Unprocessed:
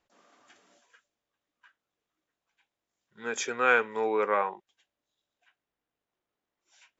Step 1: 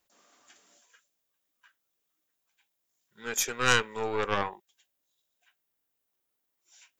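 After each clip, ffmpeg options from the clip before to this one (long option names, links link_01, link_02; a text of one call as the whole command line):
ffmpeg -i in.wav -af "aeval=exprs='0.376*(cos(1*acos(clip(val(0)/0.376,-1,1)))-cos(1*PI/2))+0.119*(cos(4*acos(clip(val(0)/0.376,-1,1)))-cos(4*PI/2))':channel_layout=same,aemphasis=mode=production:type=75fm,volume=-3dB" out.wav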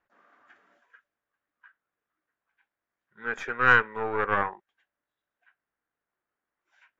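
ffmpeg -i in.wav -af "lowpass=frequency=1600:width_type=q:width=2.4" out.wav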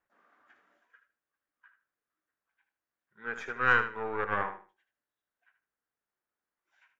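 ffmpeg -i in.wav -af "aecho=1:1:77|154|231:0.316|0.0696|0.0153,volume=-5.5dB" out.wav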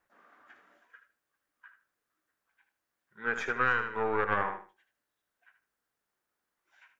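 ffmpeg -i in.wav -af "acompressor=threshold=-29dB:ratio=10,volume=6dB" out.wav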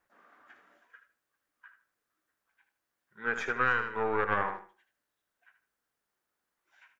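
ffmpeg -i in.wav -filter_complex "[0:a]asplit=2[link_01][link_02];[link_02]adelay=160,highpass=300,lowpass=3400,asoftclip=type=hard:threshold=-20dB,volume=-27dB[link_03];[link_01][link_03]amix=inputs=2:normalize=0" out.wav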